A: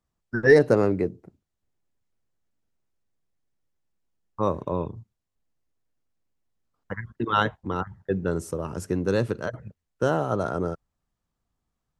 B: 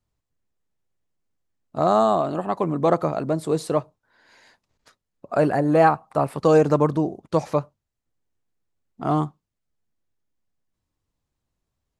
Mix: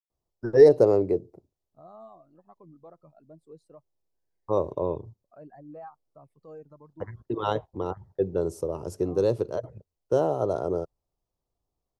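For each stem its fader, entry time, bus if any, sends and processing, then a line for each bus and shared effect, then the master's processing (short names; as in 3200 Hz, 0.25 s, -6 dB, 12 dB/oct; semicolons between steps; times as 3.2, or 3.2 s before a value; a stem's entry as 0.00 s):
-3.0 dB, 0.10 s, no send, EQ curve 140 Hz 0 dB, 210 Hz -4 dB, 380 Hz +10 dB, 620 Hz +8 dB, 1000 Hz +1 dB, 1600 Hz -13 dB, 5000 Hz 0 dB, 7900 Hz -4 dB, 12000 Hz -1 dB
-19.0 dB, 0.00 s, no send, reverb removal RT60 1.1 s; limiter -13 dBFS, peak gain reduction 7 dB; spectral expander 1.5:1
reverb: off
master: bell 380 Hz -4.5 dB 2.3 oct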